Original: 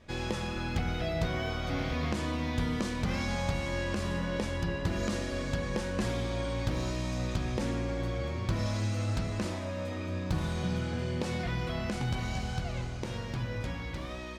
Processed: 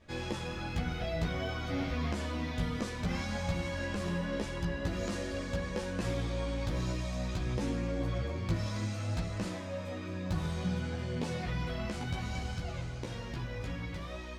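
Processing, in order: chorus voices 6, 0.51 Hz, delay 14 ms, depth 3.9 ms

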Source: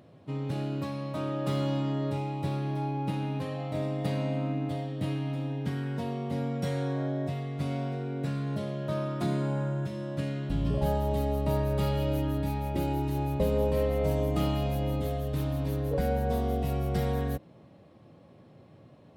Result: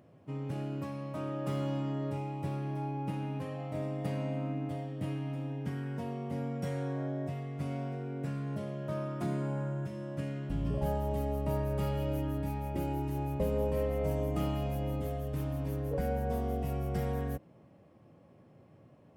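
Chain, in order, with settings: peaking EQ 3.9 kHz -10 dB 0.48 oct; trim -4.5 dB

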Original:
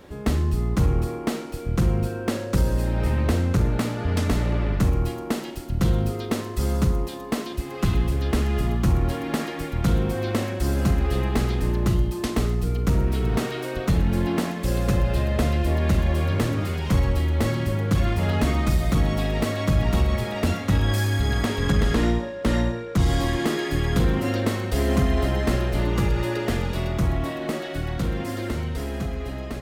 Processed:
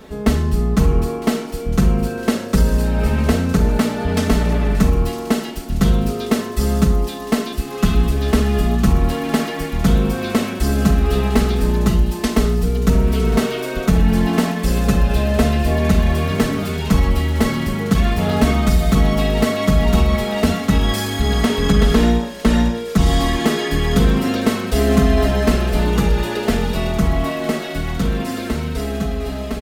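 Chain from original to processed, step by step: band-stop 990 Hz, Q 11; comb 4.6 ms, depth 72%; feedback echo behind a high-pass 957 ms, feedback 69%, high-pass 2.9 kHz, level -12.5 dB; trim +5 dB

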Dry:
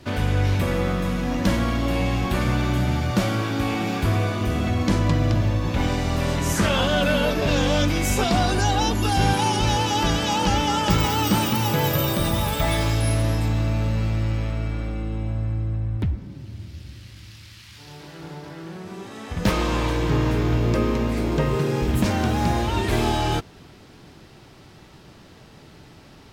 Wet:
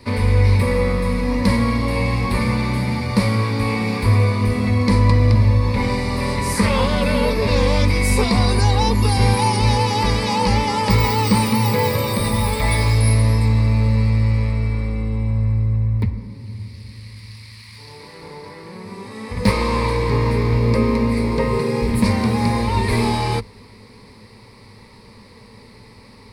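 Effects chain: rippled EQ curve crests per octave 0.92, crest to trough 14 dB; trim +1 dB

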